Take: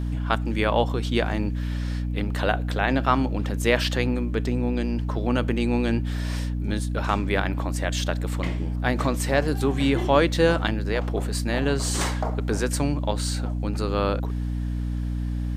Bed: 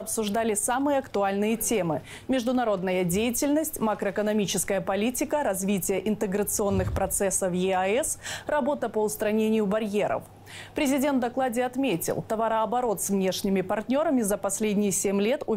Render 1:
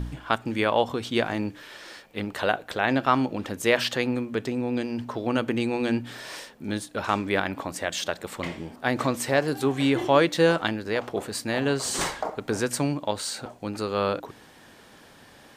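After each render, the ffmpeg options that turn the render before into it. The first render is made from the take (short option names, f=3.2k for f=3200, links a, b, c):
-af "bandreject=f=60:t=h:w=4,bandreject=f=120:t=h:w=4,bandreject=f=180:t=h:w=4,bandreject=f=240:t=h:w=4,bandreject=f=300:t=h:w=4"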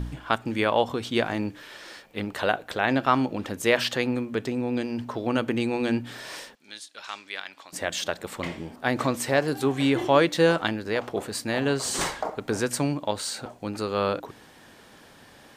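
-filter_complex "[0:a]asettb=1/sr,asplit=3[a][b][c];[a]atrim=end=6.554[d];[b]atrim=start=6.55:end=7.73,asetpts=PTS-STARTPTS,afade=t=in:d=0.004:c=qsin,afade=t=out:st=1.176:d=0.004:c=qsin,bandpass=f=4.6k:t=q:w=1[e];[c]atrim=start=7.726[f];[d][e]acrossfade=d=0.004:c1=hsin:c2=qsin[g];[g][f]acrossfade=d=0.004:c1=qsin:c2=hsin"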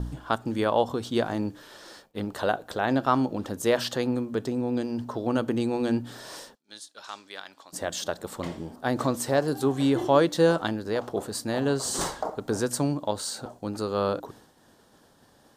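-af "agate=range=-33dB:threshold=-45dB:ratio=3:detection=peak,equalizer=f=2.3k:t=o:w=0.87:g=-12"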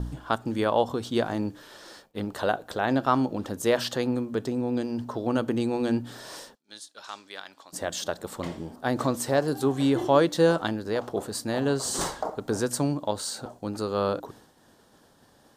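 -af anull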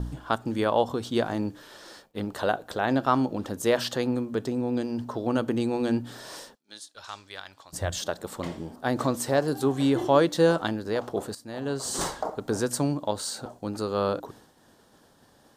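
-filter_complex "[0:a]asettb=1/sr,asplit=3[a][b][c];[a]atrim=end=6.944[d];[b]atrim=start=6.94:end=8.01,asetpts=PTS-STARTPTS,afade=t=in:d=0.004:c=qsin,afade=t=out:st=1.066:d=0.004:c=qsin,lowshelf=f=150:t=q:w=1.5:g=13[e];[c]atrim=start=8.006[f];[d][e]acrossfade=d=0.004:c1=hsin:c2=qsin[g];[g][f]acrossfade=d=0.004:c1=qsin:c2=hsin,asplit=2[h][i];[h]atrim=end=11.35,asetpts=PTS-STARTPTS,afade=t=out:st=11.346:d=0.004:c=hsin:silence=0.149624[j];[i]atrim=start=11.35,asetpts=PTS-STARTPTS,afade=t=in:d=0.7:silence=0.149624[k];[j][k]concat=n=2:v=0:a=1"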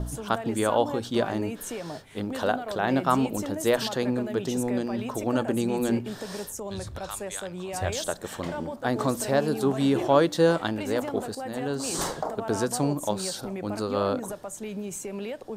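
-filter_complex "[1:a]volume=-10dB[a];[0:a][a]amix=inputs=2:normalize=0"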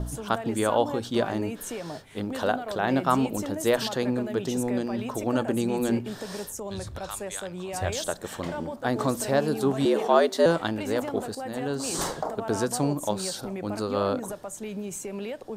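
-filter_complex "[0:a]asettb=1/sr,asplit=3[a][b][c];[a]atrim=end=9.854[d];[b]atrim=start=9.85:end=10.46,asetpts=PTS-STARTPTS,afade=t=in:d=0.004:c=qsin,afade=t=out:st=0.606:d=0.004:c=qsin,afreqshift=89[e];[c]atrim=start=10.456[f];[d][e]acrossfade=d=0.004:c1=hsin:c2=qsin[g];[g][f]acrossfade=d=0.004:c1=qsin:c2=hsin"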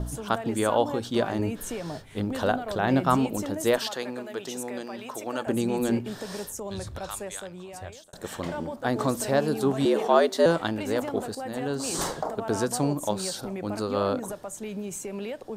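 -filter_complex "[0:a]asettb=1/sr,asplit=3[a][b][c];[a]atrim=end=1.394[d];[b]atrim=start=1.39:end=3.17,asetpts=PTS-STARTPTS,afade=t=in:d=0.004:c=qsin,afade=t=out:st=1.776:d=0.004:c=qsin,lowshelf=f=120:g=10.5[e];[c]atrim=start=3.166[f];[d][e]acrossfade=d=0.004:c1=hsin:c2=qsin[g];[g][f]acrossfade=d=0.004:c1=qsin:c2=hsin,asettb=1/sr,asplit=3[h][i][j];[h]atrim=end=3.784[k];[i]atrim=start=3.78:end=5.47,asetpts=PTS-STARTPTS,afade=t=in:d=0.004:c=qsin,afade=t=out:st=1.686:d=0.004:c=qsin,highpass=f=740:p=1[l];[j]atrim=start=5.466[m];[k][l]acrossfade=d=0.004:c1=hsin:c2=qsin[n];[n][m]acrossfade=d=0.004:c1=qsin:c2=hsin,asplit=2[o][p];[o]atrim=end=8.13,asetpts=PTS-STARTPTS,afade=t=out:st=7.13:d=1[q];[p]atrim=start=8.13,asetpts=PTS-STARTPTS,afade=t=in:d=0.004:c=hsin[r];[q][r]concat=n=2:v=0:a=1"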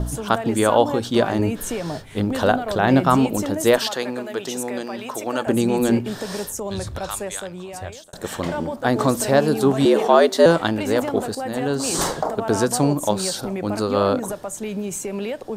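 -af "volume=7dB,alimiter=limit=-2dB:level=0:latency=1"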